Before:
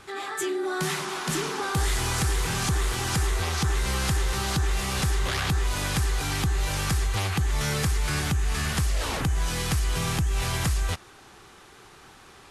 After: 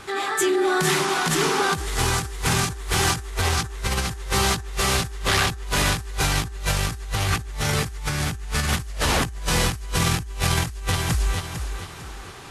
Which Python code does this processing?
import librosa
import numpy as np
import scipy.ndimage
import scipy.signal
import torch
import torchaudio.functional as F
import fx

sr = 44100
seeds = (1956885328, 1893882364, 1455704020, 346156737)

y = fx.echo_feedback(x, sr, ms=451, feedback_pct=37, wet_db=-6.0)
y = fx.over_compress(y, sr, threshold_db=-27.0, ratio=-0.5)
y = y * librosa.db_to_amplitude(4.0)